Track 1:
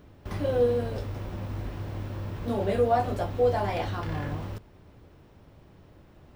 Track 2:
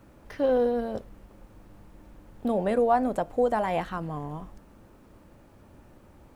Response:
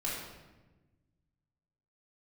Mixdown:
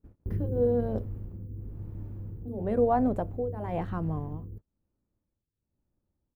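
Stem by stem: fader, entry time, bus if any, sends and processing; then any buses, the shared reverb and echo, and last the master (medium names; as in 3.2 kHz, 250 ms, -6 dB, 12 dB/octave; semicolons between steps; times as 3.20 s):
-3.0 dB, 0.00 s, no send, FFT band-reject 520–10000 Hz; auto duck -12 dB, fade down 1.30 s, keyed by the second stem
-4.5 dB, 4.2 ms, no send, treble shelf 2.7 kHz -11 dB; tremolo of two beating tones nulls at 1 Hz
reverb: none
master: gate -51 dBFS, range -30 dB; bass shelf 350 Hz +10.5 dB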